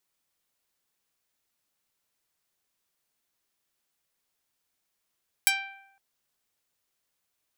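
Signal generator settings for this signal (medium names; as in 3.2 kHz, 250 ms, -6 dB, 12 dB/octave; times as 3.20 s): plucked string G5, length 0.51 s, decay 0.87 s, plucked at 0.18, medium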